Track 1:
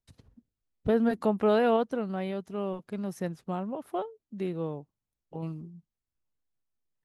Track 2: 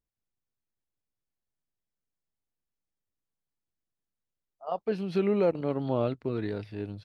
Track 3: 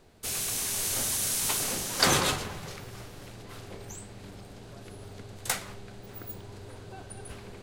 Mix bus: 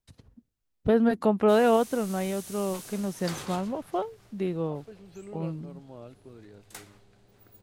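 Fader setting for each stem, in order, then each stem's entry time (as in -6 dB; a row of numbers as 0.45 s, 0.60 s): +3.0 dB, -17.5 dB, -15.0 dB; 0.00 s, 0.00 s, 1.25 s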